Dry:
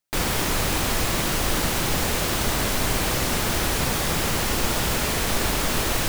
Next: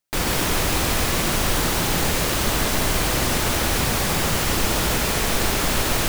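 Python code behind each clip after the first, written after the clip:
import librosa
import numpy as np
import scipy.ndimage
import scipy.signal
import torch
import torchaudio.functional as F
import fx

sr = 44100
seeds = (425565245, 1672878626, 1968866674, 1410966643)

y = x + 10.0 ** (-5.0 / 20.0) * np.pad(x, (int(141 * sr / 1000.0), 0))[:len(x)]
y = y * 10.0 ** (1.0 / 20.0)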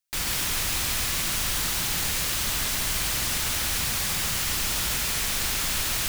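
y = fx.tone_stack(x, sr, knobs='5-5-5')
y = y * 10.0 ** (4.5 / 20.0)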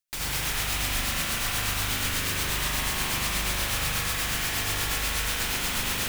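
y = x * (1.0 - 0.46 / 2.0 + 0.46 / 2.0 * np.cos(2.0 * np.pi * 8.3 * (np.arange(len(x)) / sr)))
y = fx.rev_spring(y, sr, rt60_s=3.0, pass_ms=(40,), chirp_ms=80, drr_db=-3.5)
y = y * 10.0 ** (-1.5 / 20.0)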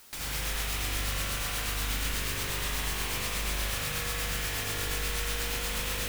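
y = fx.doubler(x, sr, ms=25.0, db=-11.0)
y = fx.echo_filtered(y, sr, ms=61, feedback_pct=84, hz=1000.0, wet_db=-6.5)
y = fx.quant_dither(y, sr, seeds[0], bits=8, dither='triangular')
y = y * 10.0 ** (-5.5 / 20.0)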